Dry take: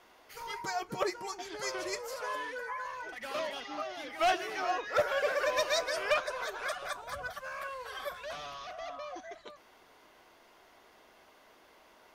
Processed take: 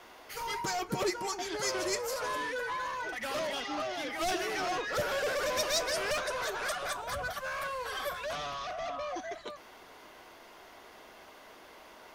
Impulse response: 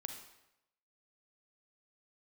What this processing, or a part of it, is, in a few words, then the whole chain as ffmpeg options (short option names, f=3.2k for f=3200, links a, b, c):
one-band saturation: -filter_complex "[0:a]acrossover=split=320|5000[a][b][c];[b]asoftclip=type=tanh:threshold=-39.5dB[d];[a][d][c]amix=inputs=3:normalize=0,asettb=1/sr,asplit=3[e][f][g];[e]atrim=end=8.354[h];[f]atrim=start=8.35:end=9.09,asetpts=PTS-STARTPTS,afade=t=in:d=0.004:c=qsin,afade=t=out:st=0.736:d=0.004:c=qsin,highshelf=f=11k:g=-8.5[i];[g]atrim=start=9.086[j];[h][i]acrossfade=d=0.004:c1=hsin:c2=qsin[k];[k][j]acrossfade=d=0.004:c1=qsin:c2=hsin,volume=7.5dB"